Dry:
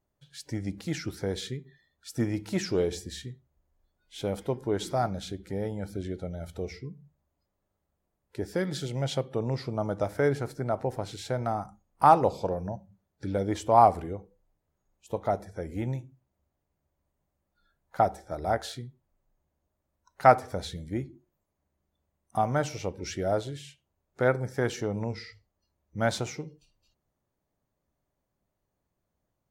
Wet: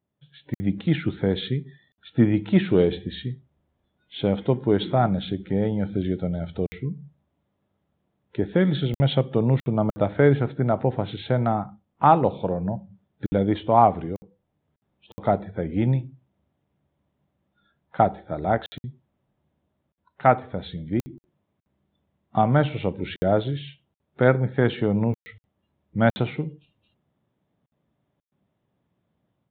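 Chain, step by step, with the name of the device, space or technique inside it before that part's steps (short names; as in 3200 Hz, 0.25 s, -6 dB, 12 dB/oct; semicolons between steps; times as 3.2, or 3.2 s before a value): call with lost packets (HPF 180 Hz 12 dB/oct; downsampling 8000 Hz; AGC gain up to 8.5 dB; packet loss packets of 60 ms); tone controls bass +13 dB, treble +10 dB; gain -3 dB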